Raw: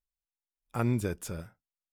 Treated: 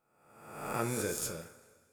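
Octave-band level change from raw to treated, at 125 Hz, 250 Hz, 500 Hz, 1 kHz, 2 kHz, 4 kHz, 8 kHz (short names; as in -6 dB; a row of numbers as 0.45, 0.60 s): -10.0, -6.5, 0.0, +1.5, +2.0, +5.5, +8.0 dB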